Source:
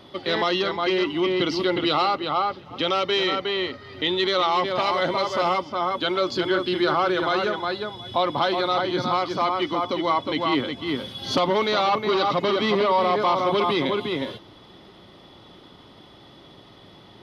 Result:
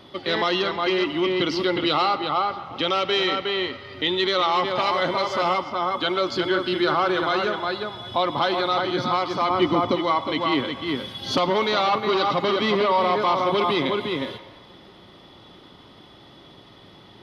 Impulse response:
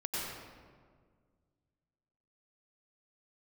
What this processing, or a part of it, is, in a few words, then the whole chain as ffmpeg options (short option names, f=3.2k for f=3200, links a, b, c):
filtered reverb send: -filter_complex "[0:a]asettb=1/sr,asplit=3[a][b][c];[a]atrim=end=9.504[d];[b]atrim=start=9.5:end=9.96,asetpts=PTS-STARTPTS,afade=t=in:d=0.004:c=qsin,afade=t=out:st=0.456:d=0.004:c=qsin,lowshelf=f=410:g=11[e];[c]atrim=start=9.956[f];[d][e]acrossfade=d=0.004:c1=hsin:c2=qsin[g];[g][f]acrossfade=d=0.004:c1=qsin:c2=hsin,asplit=2[h][i];[i]highpass=f=590:w=0.5412,highpass=f=590:w=1.3066,lowpass=4.5k[j];[1:a]atrim=start_sample=2205[k];[j][k]afir=irnorm=-1:irlink=0,volume=-15dB[l];[h][l]amix=inputs=2:normalize=0"